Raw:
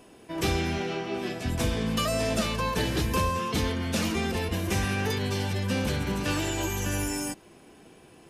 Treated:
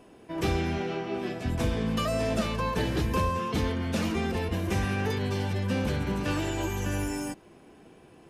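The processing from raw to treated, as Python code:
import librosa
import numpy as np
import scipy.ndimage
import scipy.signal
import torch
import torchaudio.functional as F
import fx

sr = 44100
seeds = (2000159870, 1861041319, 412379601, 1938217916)

y = fx.high_shelf(x, sr, hz=2900.0, db=-8.5)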